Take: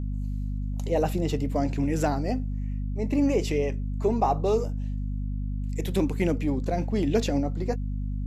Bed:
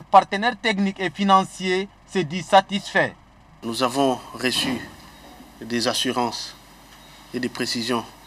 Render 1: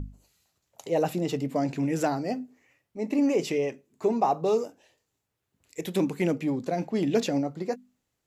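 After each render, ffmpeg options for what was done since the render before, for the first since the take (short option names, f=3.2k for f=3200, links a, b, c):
-af "bandreject=f=50:t=h:w=6,bandreject=f=100:t=h:w=6,bandreject=f=150:t=h:w=6,bandreject=f=200:t=h:w=6,bandreject=f=250:t=h:w=6"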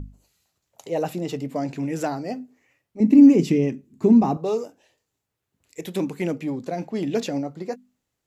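-filter_complex "[0:a]asettb=1/sr,asplit=3[a][b][c];[a]atrim=end=3.004[d];[b]atrim=start=3:end=4.37,asetpts=PTS-STARTPTS,afade=t=in:d=0.004:c=qsin,afade=t=out:st=1.366:d=0.004:c=qsin,lowshelf=f=370:t=q:w=1.5:g=13[e];[c]atrim=start=4.366[f];[d][e]acrossfade=d=0.004:c1=hsin:c2=qsin[g];[g][f]acrossfade=d=0.004:c1=qsin:c2=hsin"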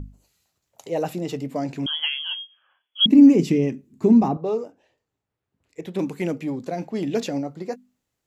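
-filter_complex "[0:a]asettb=1/sr,asplit=3[a][b][c];[a]atrim=end=1.864[d];[b]atrim=start=1.86:end=3.06,asetpts=PTS-STARTPTS,afade=t=in:d=0.004:c=qsin,afade=t=out:st=1.196:d=0.004:c=qsin,lowpass=f=3k:t=q:w=0.5098,lowpass=f=3k:t=q:w=0.6013,lowpass=f=3k:t=q:w=0.9,lowpass=f=3k:t=q:w=2.563,afreqshift=-3500[e];[c]atrim=start=3.056[f];[d][e]acrossfade=d=0.004:c1=hsin:c2=qsin[g];[g][f]acrossfade=d=0.004:c1=qsin:c2=hsin,asettb=1/sr,asplit=3[h][i][j];[h]atrim=end=4.284[k];[i]atrim=start=4.28:end=5.99,asetpts=PTS-STARTPTS,afade=t=in:d=0.004:c=qsin,afade=t=out:st=1.706:d=0.004:c=qsin,lowpass=f=1.8k:p=1[l];[j]atrim=start=5.986[m];[k][l]acrossfade=d=0.004:c1=hsin:c2=qsin[n];[n][m]acrossfade=d=0.004:c1=qsin:c2=hsin"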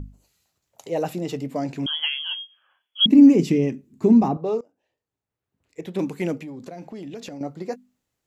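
-filter_complex "[0:a]asettb=1/sr,asplit=3[a][b][c];[a]atrim=end=6.424[d];[b]atrim=start=6.42:end=7.41,asetpts=PTS-STARTPTS,afade=t=in:d=0.004:c=qsin,afade=t=out:st=0.986:d=0.004:c=qsin,acompressor=threshold=-33dB:ratio=6:attack=3.2:release=140:knee=1:detection=peak[e];[c]atrim=start=7.406[f];[d][e]acrossfade=d=0.004:c1=hsin:c2=qsin[g];[g][f]acrossfade=d=0.004:c1=qsin:c2=hsin,asplit=2[h][i];[h]atrim=end=4.61,asetpts=PTS-STARTPTS,afade=t=out:st=4.606:d=0.004:c=hsin:silence=0.0749894[j];[i]atrim=start=4.61,asetpts=PTS-STARTPTS,afade=t=in:d=1.19:silence=0.0749894[k];[j][k]concat=n=2:v=0:a=1"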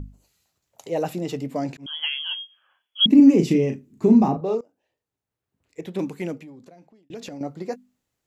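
-filter_complex "[0:a]asettb=1/sr,asplit=3[a][b][c];[a]atrim=end=3.164[d];[b]atrim=start=3.16:end=4.55,asetpts=PTS-STARTPTS,afade=t=in:d=0.004:c=qsin,afade=t=out:st=1.386:d=0.004:c=qsin,asplit=2[e][f];[f]adelay=37,volume=-7.5dB[g];[e][g]amix=inputs=2:normalize=0,atrim=end_sample=61299[h];[c]atrim=start=4.546[i];[d][h]acrossfade=d=0.004:c1=hsin:c2=qsin[j];[j][i]acrossfade=d=0.004:c1=qsin:c2=hsin,asplit=3[k][l][m];[k]atrim=end=1.77,asetpts=PTS-STARTPTS,afade=t=out:st=1.766:d=0.004:c=hsin[n];[l]atrim=start=1.77:end=7.1,asetpts=PTS-STARTPTS,afade=t=in:d=0.46:c=qsin,afade=t=out:st=4.03:d=1.3[o];[m]atrim=start=7.1,asetpts=PTS-STARTPTS,afade=t=in:d=0.004:c=hsin[p];[n][o][p]concat=n=3:v=0:a=1"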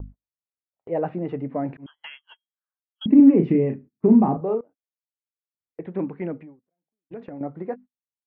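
-af "lowpass=f=1.9k:w=0.5412,lowpass=f=1.9k:w=1.3066,agate=range=-35dB:threshold=-41dB:ratio=16:detection=peak"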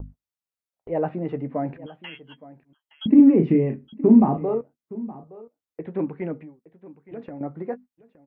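-filter_complex "[0:a]asplit=2[a][b];[b]adelay=13,volume=-12dB[c];[a][c]amix=inputs=2:normalize=0,aecho=1:1:868:0.119"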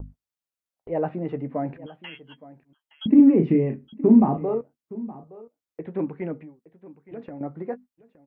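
-af "volume=-1dB"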